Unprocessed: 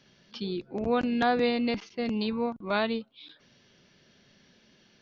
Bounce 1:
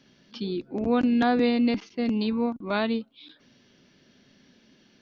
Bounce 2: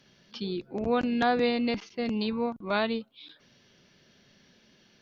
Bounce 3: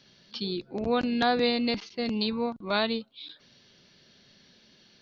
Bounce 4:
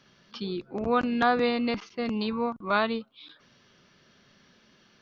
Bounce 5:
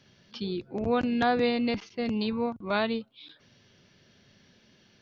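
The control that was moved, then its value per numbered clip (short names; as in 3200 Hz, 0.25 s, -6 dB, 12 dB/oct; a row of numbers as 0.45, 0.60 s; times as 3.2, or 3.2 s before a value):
bell, frequency: 270, 13000, 4200, 1200, 100 Hz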